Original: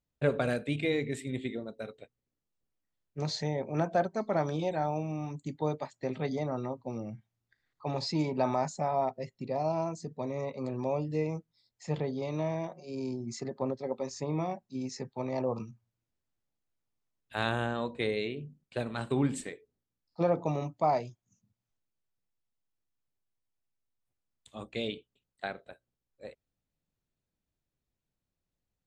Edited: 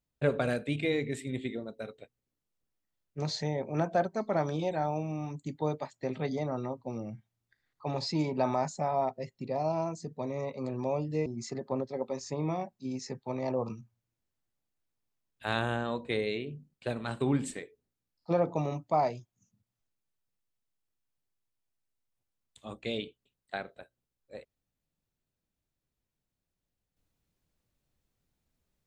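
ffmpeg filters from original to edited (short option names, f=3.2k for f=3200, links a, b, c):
-filter_complex "[0:a]asplit=2[a][b];[a]atrim=end=11.262[c];[b]atrim=start=13.158[d];[c][d]acrossfade=d=0.004:c1=hsin:c2=hsin"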